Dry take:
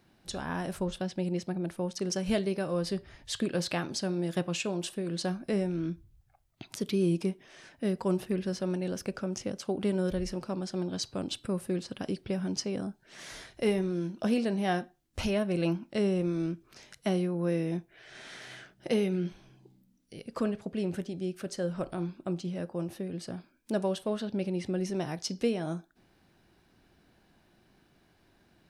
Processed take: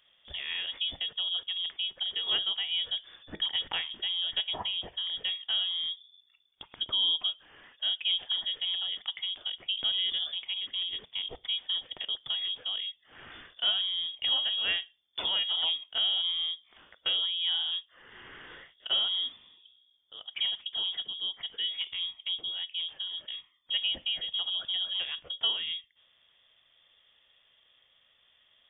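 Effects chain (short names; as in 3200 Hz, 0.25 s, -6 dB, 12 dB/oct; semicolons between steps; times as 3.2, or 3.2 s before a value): 8.83–9.51 air absorption 79 m; inverted band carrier 3500 Hz; gain -1 dB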